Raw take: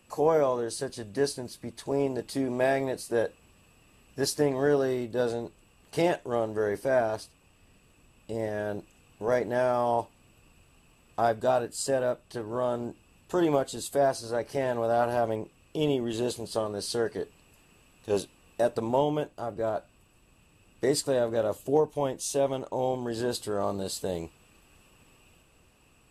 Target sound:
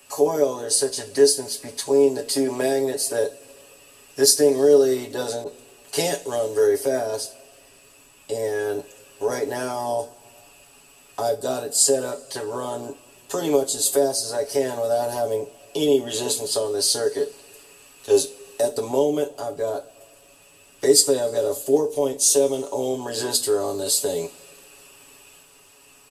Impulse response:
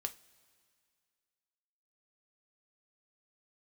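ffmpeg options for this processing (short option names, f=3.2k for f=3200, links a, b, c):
-filter_complex "[0:a]bass=f=250:g=-14,treble=f=4k:g=8,aecho=1:1:7.2:0.8,acrossover=split=350|460|4100[a][b][c][d];[c]acompressor=threshold=-39dB:ratio=6[e];[a][b][e][d]amix=inputs=4:normalize=0[f];[1:a]atrim=start_sample=2205[g];[f][g]afir=irnorm=-1:irlink=0,asettb=1/sr,asplit=3[h][i][j];[h]atrim=end=5.444[k];[i]atrim=start=5.44:end=6.67,asetpts=PTS-STARTPTS,afade=t=in:d=0.004:c=qsin,afade=t=out:st=1.226:d=0.004:c=qsin,adynamicequalizer=threshold=0.00708:dfrequency=1500:dqfactor=0.7:tfrequency=1500:tqfactor=0.7:attack=5:release=100:ratio=0.375:range=2:mode=boostabove:tftype=highshelf[l];[j]atrim=start=6.666[m];[k][l]acrossfade=d=0.004:c1=hsin:c2=qsin[n];[n][m]acrossfade=d=0.004:c1=qsin:c2=hsin,volume=8.5dB"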